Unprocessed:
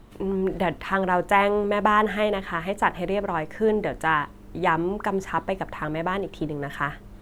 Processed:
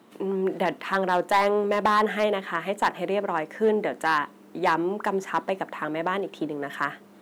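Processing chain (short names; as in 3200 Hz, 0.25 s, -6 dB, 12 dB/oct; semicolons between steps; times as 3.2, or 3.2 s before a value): HPF 200 Hz 24 dB/oct; hard clip -14 dBFS, distortion -15 dB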